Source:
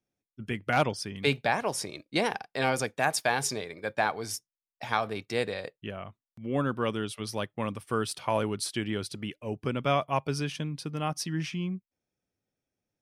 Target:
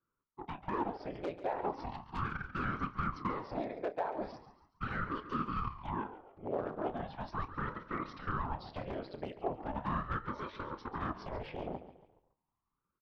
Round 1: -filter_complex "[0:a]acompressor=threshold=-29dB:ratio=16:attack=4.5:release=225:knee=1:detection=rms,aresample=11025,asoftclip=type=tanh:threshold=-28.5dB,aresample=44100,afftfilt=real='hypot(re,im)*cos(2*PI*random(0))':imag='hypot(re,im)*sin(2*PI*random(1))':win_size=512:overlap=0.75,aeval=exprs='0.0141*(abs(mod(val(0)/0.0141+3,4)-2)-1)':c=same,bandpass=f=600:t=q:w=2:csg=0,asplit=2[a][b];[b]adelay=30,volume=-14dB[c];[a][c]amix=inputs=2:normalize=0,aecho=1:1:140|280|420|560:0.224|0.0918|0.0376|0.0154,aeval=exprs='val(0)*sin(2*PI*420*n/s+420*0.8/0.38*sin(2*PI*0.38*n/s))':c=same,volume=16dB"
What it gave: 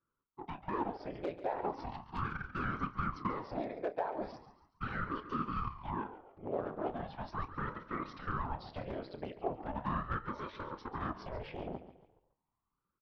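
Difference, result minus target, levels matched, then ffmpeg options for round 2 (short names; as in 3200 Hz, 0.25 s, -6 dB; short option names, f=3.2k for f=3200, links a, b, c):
soft clip: distortion +12 dB
-filter_complex "[0:a]acompressor=threshold=-29dB:ratio=16:attack=4.5:release=225:knee=1:detection=rms,aresample=11025,asoftclip=type=tanh:threshold=-20.5dB,aresample=44100,afftfilt=real='hypot(re,im)*cos(2*PI*random(0))':imag='hypot(re,im)*sin(2*PI*random(1))':win_size=512:overlap=0.75,aeval=exprs='0.0141*(abs(mod(val(0)/0.0141+3,4)-2)-1)':c=same,bandpass=f=600:t=q:w=2:csg=0,asplit=2[a][b];[b]adelay=30,volume=-14dB[c];[a][c]amix=inputs=2:normalize=0,aecho=1:1:140|280|420|560:0.224|0.0918|0.0376|0.0154,aeval=exprs='val(0)*sin(2*PI*420*n/s+420*0.8/0.38*sin(2*PI*0.38*n/s))':c=same,volume=16dB"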